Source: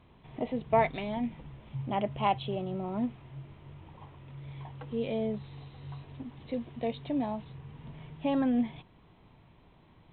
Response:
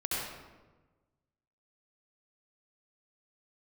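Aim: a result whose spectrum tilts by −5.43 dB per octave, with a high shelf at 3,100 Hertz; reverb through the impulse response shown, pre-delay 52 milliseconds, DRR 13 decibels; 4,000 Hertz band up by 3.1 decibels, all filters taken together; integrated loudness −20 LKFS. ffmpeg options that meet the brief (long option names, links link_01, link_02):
-filter_complex "[0:a]highshelf=frequency=3100:gain=-5,equalizer=frequency=4000:width_type=o:gain=8,asplit=2[link_01][link_02];[1:a]atrim=start_sample=2205,adelay=52[link_03];[link_02][link_03]afir=irnorm=-1:irlink=0,volume=-19.5dB[link_04];[link_01][link_04]amix=inputs=2:normalize=0,volume=12.5dB"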